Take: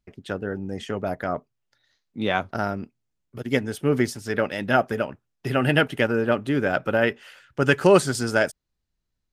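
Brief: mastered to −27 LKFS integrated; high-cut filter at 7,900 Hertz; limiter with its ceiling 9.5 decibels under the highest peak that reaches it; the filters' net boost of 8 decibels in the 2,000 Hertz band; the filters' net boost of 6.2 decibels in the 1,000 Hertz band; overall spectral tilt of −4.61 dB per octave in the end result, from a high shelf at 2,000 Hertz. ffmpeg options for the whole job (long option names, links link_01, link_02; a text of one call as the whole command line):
ffmpeg -i in.wav -af "lowpass=7900,equalizer=frequency=1000:width_type=o:gain=5.5,highshelf=frequency=2000:gain=5.5,equalizer=frequency=2000:width_type=o:gain=5.5,volume=-4dB,alimiter=limit=-12dB:level=0:latency=1" out.wav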